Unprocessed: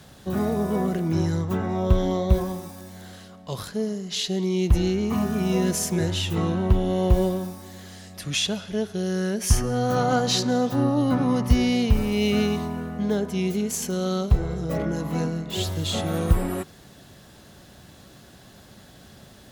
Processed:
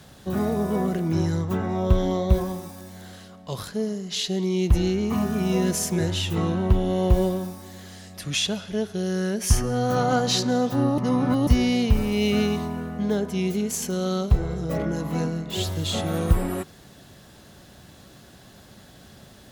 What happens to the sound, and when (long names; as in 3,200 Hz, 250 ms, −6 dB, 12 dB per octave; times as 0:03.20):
0:10.98–0:11.47: reverse